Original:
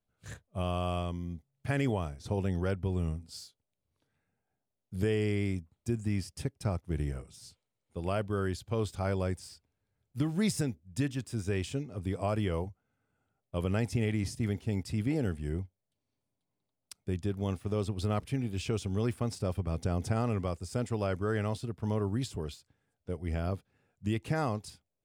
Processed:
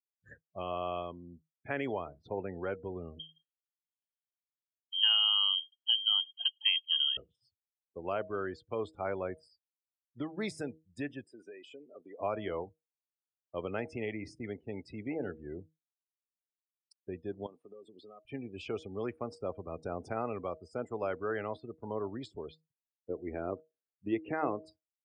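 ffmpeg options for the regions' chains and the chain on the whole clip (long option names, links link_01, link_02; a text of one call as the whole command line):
ffmpeg -i in.wav -filter_complex "[0:a]asettb=1/sr,asplit=3[link_01][link_02][link_03];[link_01]atrim=end=3.194[link_04];[link_02]atrim=start=3.19:end=7.17,asetpts=PTS-STARTPTS,afade=type=in:duration=0.004:curve=qsin,afade=type=out:start_time=3.976:duration=0.004:curve=qsin,lowpass=frequency=2800:width_type=q:width=0.5098,lowpass=frequency=2800:width_type=q:width=0.6013,lowpass=frequency=2800:width_type=q:width=0.9,lowpass=frequency=2800:width_type=q:width=2.563,afreqshift=-3300,aemphasis=mode=production:type=riaa[link_05];[link_03]atrim=start=7.166[link_06];[link_04][link_05]acrossfade=duration=0.004:curve1=hsin:curve2=qsin[link_07];[link_07][link_06]acrossfade=duration=0.004:curve1=qsin:curve2=hsin,asettb=1/sr,asplit=3[link_08][link_09][link_10];[link_08]atrim=end=11.244[link_11];[link_09]atrim=start=11.24:end=12.2,asetpts=PTS-STARTPTS,afade=type=in:duration=0.004:curve=qsin,afade=type=out:start_time=0.956:duration=0.004:curve=qsin,highpass=360,acompressor=threshold=-40dB:ratio=16:attack=3.2:release=140:knee=1:detection=peak[link_12];[link_10]atrim=start=12.196[link_13];[link_11][link_12]acrossfade=duration=0.004:curve1=hsin:curve2=qsin[link_14];[link_14][link_13]acrossfade=duration=0.004:curve1=qsin:curve2=hsin,asettb=1/sr,asplit=3[link_15][link_16][link_17];[link_15]atrim=end=17.464[link_18];[link_16]atrim=start=17.46:end=18.25,asetpts=PTS-STARTPTS,afade=type=in:duration=0.004:curve=qsin,afade=type=out:start_time=0.786:duration=0.004:curve=qsin,highpass=230,highshelf=frequency=3400:gain=9.5,acompressor=threshold=-43dB:ratio=8:attack=3.2:release=140:knee=1:detection=peak[link_19];[link_17]atrim=start=18.246[link_20];[link_18][link_19]acrossfade=duration=0.004:curve1=hsin:curve2=qsin[link_21];[link_21][link_20]acrossfade=duration=0.004:curve1=qsin:curve2=hsin,asettb=1/sr,asplit=3[link_22][link_23][link_24];[link_22]atrim=end=23.104[link_25];[link_23]atrim=start=23.1:end=24.66,asetpts=PTS-STARTPTS,afade=type=in:duration=0.004:curve=qsin,afade=type=out:start_time=1.556:duration=0.004:curve=qsin,lowpass=3600,equalizer=frequency=330:width_type=o:width=0.69:gain=8.5[link_26];[link_24]atrim=start=24.656[link_27];[link_25][link_26]acrossfade=duration=0.004:curve1=hsin:curve2=qsin[link_28];[link_28][link_27]acrossfade=duration=0.004:curve1=qsin:curve2=hsin,bandreject=frequency=158.2:width_type=h:width=4,bandreject=frequency=316.4:width_type=h:width=4,bandreject=frequency=474.6:width_type=h:width=4,bandreject=frequency=632.8:width_type=h:width=4,afftdn=noise_reduction=35:noise_floor=-44,acrossover=split=300 3600:gain=0.141 1 0.224[link_29][link_30][link_31];[link_29][link_30][link_31]amix=inputs=3:normalize=0" out.wav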